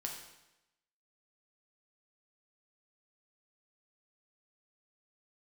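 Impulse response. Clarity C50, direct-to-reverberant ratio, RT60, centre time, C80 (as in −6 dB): 5.0 dB, 0.0 dB, 0.95 s, 36 ms, 7.0 dB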